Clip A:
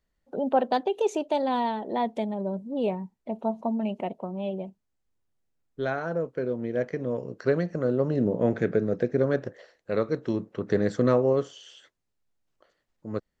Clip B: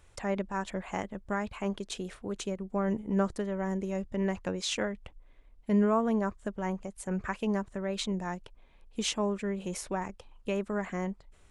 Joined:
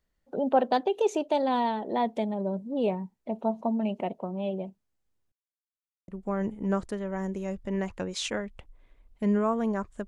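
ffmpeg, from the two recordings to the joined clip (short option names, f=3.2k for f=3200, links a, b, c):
-filter_complex "[0:a]apad=whole_dur=10.07,atrim=end=10.07,asplit=2[a][b];[a]atrim=end=5.32,asetpts=PTS-STARTPTS,afade=t=out:st=5.316:d=0.004:c=hsin[c];[b]atrim=start=5.32:end=6.08,asetpts=PTS-STARTPTS,volume=0[d];[1:a]atrim=start=2.55:end=6.54,asetpts=PTS-STARTPTS,afade=t=in:d=0.004:c=hsin[e];[c][d][e]concat=n=3:v=0:a=1"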